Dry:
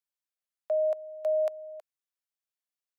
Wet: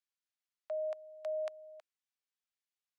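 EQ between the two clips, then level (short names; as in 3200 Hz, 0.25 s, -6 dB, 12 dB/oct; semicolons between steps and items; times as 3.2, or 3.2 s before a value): Bessel high-pass 1400 Hz, order 2; air absorption 65 m; +1.5 dB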